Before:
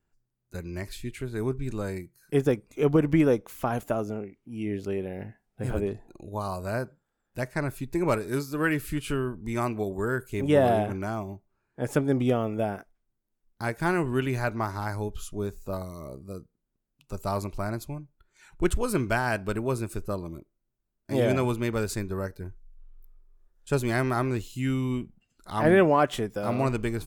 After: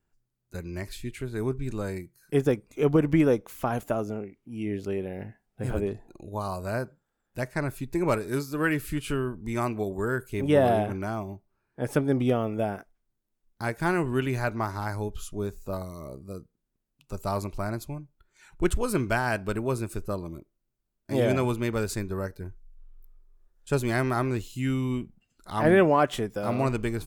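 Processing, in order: 10.29–12.55 s: band-stop 7.1 kHz, Q 6.2

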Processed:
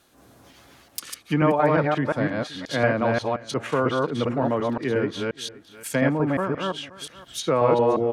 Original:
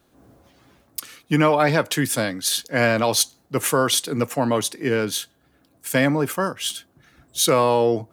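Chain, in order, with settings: chunks repeated in reverse 177 ms, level -1 dB; low-pass that closes with the level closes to 1.7 kHz, closed at -17 dBFS; on a send: delay 524 ms -21.5 dB; 4.48–5.03 s: on the sum: crackle 34 per s -> 11 per s -35 dBFS; tape noise reduction on one side only encoder only; trim -3.5 dB

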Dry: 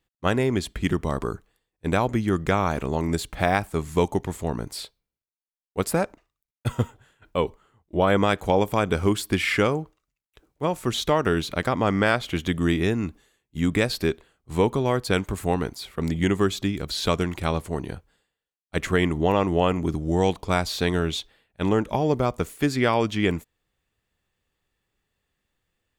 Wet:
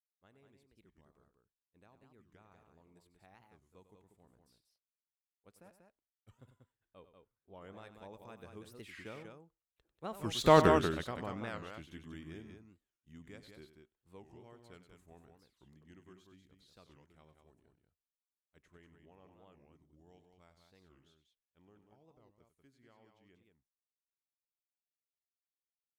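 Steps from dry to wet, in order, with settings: Doppler pass-by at 10.56 s, 19 m/s, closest 1.3 m; loudspeakers at several distances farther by 33 m -12 dB, 65 m -6 dB; warped record 45 rpm, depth 250 cents

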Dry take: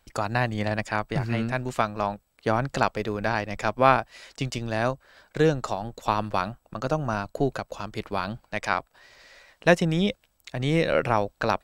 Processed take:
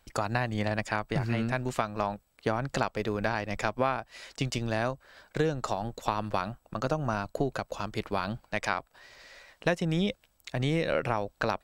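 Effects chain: compression 5:1, threshold -24 dBFS, peak gain reduction 12 dB

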